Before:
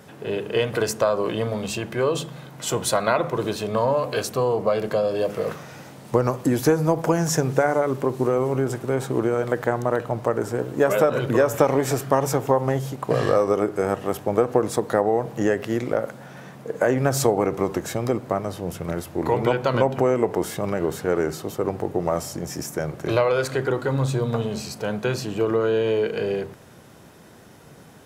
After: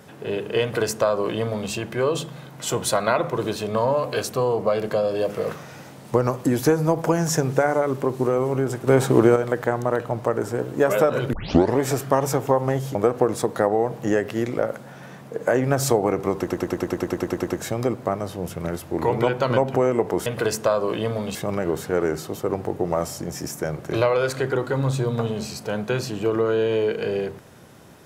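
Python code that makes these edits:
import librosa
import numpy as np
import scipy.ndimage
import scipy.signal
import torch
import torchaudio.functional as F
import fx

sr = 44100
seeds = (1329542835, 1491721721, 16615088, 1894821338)

y = fx.edit(x, sr, fx.duplicate(start_s=0.62, length_s=1.09, to_s=20.5),
    fx.clip_gain(start_s=8.87, length_s=0.49, db=7.0),
    fx.tape_start(start_s=11.33, length_s=0.44),
    fx.cut(start_s=12.95, length_s=1.34),
    fx.stutter(start_s=17.72, slice_s=0.1, count=12), tone=tone)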